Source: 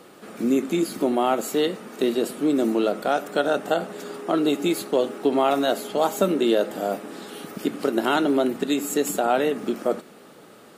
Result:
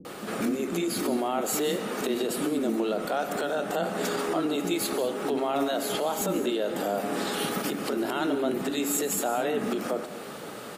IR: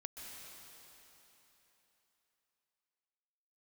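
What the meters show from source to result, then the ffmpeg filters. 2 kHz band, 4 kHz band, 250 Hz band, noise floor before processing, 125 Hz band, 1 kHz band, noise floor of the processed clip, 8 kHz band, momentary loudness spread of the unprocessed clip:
-2.5 dB, -2.0 dB, -5.0 dB, -48 dBFS, -1.5 dB, -5.0 dB, -40 dBFS, +2.5 dB, 8 LU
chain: -filter_complex "[0:a]acompressor=threshold=0.0398:ratio=6,alimiter=level_in=1.5:limit=0.0631:level=0:latency=1:release=22,volume=0.668,acrossover=split=290[s0][s1];[s1]adelay=50[s2];[s0][s2]amix=inputs=2:normalize=0,asplit=2[s3][s4];[1:a]atrim=start_sample=2205,afade=t=out:st=0.27:d=0.01,atrim=end_sample=12348[s5];[s4][s5]afir=irnorm=-1:irlink=0,volume=1.5[s6];[s3][s6]amix=inputs=2:normalize=0,volume=1.68"

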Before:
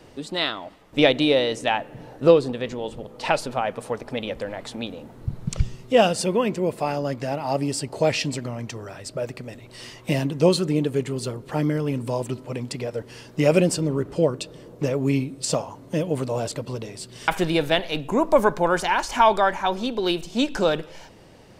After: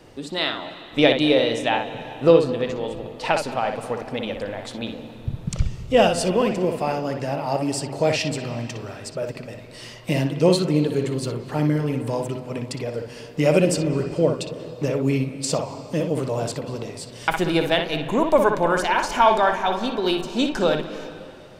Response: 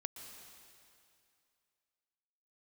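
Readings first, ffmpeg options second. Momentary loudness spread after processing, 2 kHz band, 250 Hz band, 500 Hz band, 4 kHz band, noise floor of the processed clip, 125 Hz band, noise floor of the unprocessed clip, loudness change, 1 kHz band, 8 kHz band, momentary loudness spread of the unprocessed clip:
14 LU, +1.0 dB, +1.5 dB, +1.0 dB, +1.0 dB, -41 dBFS, +1.5 dB, -47 dBFS, +1.0 dB, +1.0 dB, 0.0 dB, 15 LU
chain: -filter_complex "[0:a]asplit=2[s0][s1];[1:a]atrim=start_sample=2205,lowpass=4200,adelay=60[s2];[s1][s2]afir=irnorm=-1:irlink=0,volume=0.75[s3];[s0][s3]amix=inputs=2:normalize=0"

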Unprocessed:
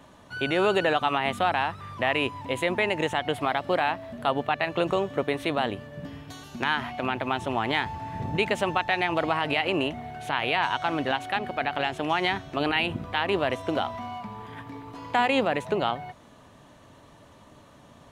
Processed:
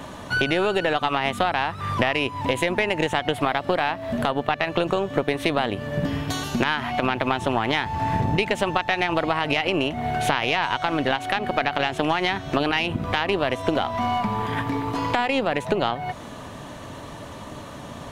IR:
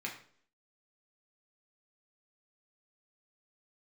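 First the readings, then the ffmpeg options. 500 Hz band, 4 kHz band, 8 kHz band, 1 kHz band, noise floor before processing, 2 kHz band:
+3.0 dB, +3.5 dB, +7.5 dB, +3.0 dB, -53 dBFS, +3.0 dB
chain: -af "acompressor=threshold=0.02:ratio=12,aeval=exprs='0.126*(cos(1*acos(clip(val(0)/0.126,-1,1)))-cos(1*PI/2))+0.0112*(cos(3*acos(clip(val(0)/0.126,-1,1)))-cos(3*PI/2))+0.00891*(cos(4*acos(clip(val(0)/0.126,-1,1)))-cos(4*PI/2))':c=same,alimiter=level_in=11.9:limit=0.891:release=50:level=0:latency=1,volume=0.631"

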